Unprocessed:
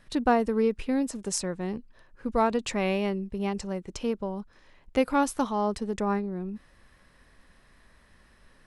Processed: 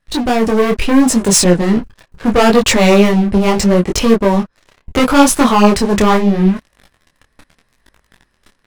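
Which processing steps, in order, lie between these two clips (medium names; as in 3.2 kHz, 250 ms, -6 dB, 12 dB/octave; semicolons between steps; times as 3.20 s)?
waveshaping leveller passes 5; level rider gain up to 7 dB; detune thickener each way 26 cents; trim +2.5 dB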